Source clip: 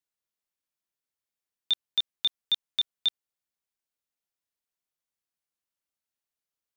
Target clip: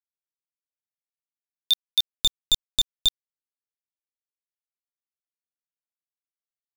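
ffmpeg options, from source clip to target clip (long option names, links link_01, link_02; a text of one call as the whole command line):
ffmpeg -i in.wav -filter_complex "[0:a]alimiter=limit=-22.5dB:level=0:latency=1,aexciter=amount=10.5:drive=3.6:freq=4000,acrusher=bits=3:mix=0:aa=0.5,asplit=3[link_01][link_02][link_03];[link_01]afade=type=out:start_time=2:duration=0.02[link_04];[link_02]aeval=exprs='0.299*(cos(1*acos(clip(val(0)/0.299,-1,1)))-cos(1*PI/2))+0.106*(cos(2*acos(clip(val(0)/0.299,-1,1)))-cos(2*PI/2))':channel_layout=same,afade=type=in:start_time=2:duration=0.02,afade=type=out:start_time=3.06:duration=0.02[link_05];[link_03]afade=type=in:start_time=3.06:duration=0.02[link_06];[link_04][link_05][link_06]amix=inputs=3:normalize=0" out.wav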